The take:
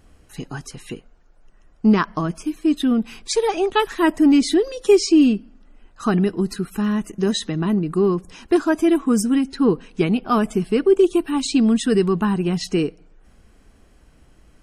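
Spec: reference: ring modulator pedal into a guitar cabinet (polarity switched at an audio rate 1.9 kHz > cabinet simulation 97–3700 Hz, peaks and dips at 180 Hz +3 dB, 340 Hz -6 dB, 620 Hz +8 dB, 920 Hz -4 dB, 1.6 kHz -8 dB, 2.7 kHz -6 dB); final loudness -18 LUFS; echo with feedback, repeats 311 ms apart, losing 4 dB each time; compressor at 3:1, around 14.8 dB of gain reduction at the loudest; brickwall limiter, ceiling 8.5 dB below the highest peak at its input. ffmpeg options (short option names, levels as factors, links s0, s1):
-af "acompressor=threshold=0.0282:ratio=3,alimiter=level_in=1.19:limit=0.0631:level=0:latency=1,volume=0.841,aecho=1:1:311|622|933|1244|1555|1866|2177|2488|2799:0.631|0.398|0.25|0.158|0.0994|0.0626|0.0394|0.0249|0.0157,aeval=exprs='val(0)*sgn(sin(2*PI*1900*n/s))':c=same,highpass=97,equalizer=f=180:t=q:w=4:g=3,equalizer=f=340:t=q:w=4:g=-6,equalizer=f=620:t=q:w=4:g=8,equalizer=f=920:t=q:w=4:g=-4,equalizer=f=1600:t=q:w=4:g=-8,equalizer=f=2700:t=q:w=4:g=-6,lowpass=f=3700:w=0.5412,lowpass=f=3700:w=1.3066,volume=7.08"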